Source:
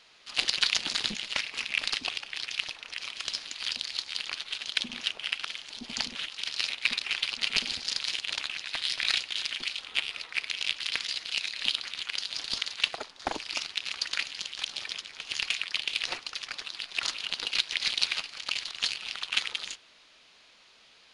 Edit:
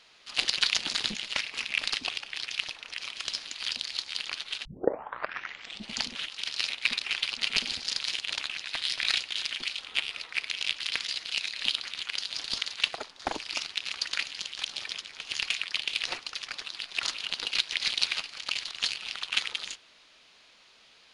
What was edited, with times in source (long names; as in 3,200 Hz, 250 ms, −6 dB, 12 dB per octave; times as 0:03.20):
0:04.65: tape start 1.32 s